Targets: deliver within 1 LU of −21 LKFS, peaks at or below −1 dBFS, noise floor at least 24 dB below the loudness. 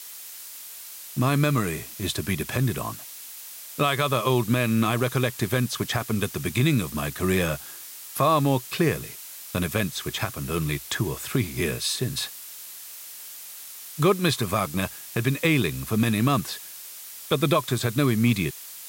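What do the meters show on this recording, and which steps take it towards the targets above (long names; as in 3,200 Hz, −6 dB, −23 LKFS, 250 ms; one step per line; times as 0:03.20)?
background noise floor −41 dBFS; target noise floor −49 dBFS; integrated loudness −25.0 LKFS; sample peak −8.5 dBFS; target loudness −21.0 LKFS
→ noise reduction from a noise print 8 dB
level +4 dB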